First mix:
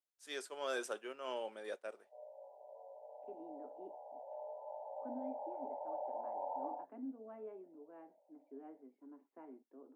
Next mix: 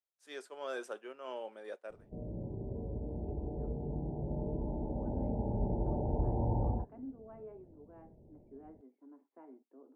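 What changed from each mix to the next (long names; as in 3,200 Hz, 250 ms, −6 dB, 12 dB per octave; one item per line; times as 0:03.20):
background: remove Butterworth high-pass 550 Hz 72 dB per octave
master: add high-shelf EQ 2,700 Hz −8.5 dB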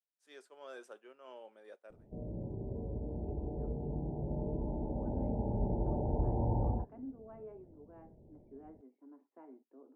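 first voice −9.0 dB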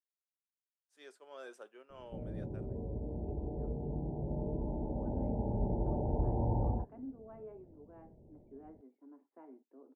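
first voice: entry +0.70 s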